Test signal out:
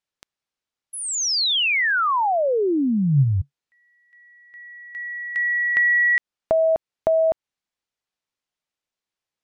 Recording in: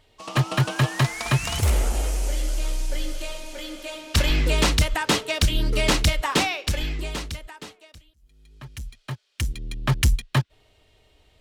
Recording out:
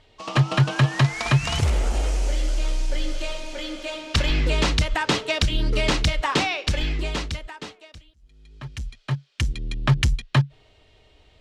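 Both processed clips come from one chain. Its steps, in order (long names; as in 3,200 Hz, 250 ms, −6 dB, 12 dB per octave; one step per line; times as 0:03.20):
downward compressor 3 to 1, threshold −22 dBFS
dynamic equaliser 140 Hz, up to +7 dB, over −43 dBFS, Q 7.6
low-pass filter 6,100 Hz 12 dB per octave
level +3.5 dB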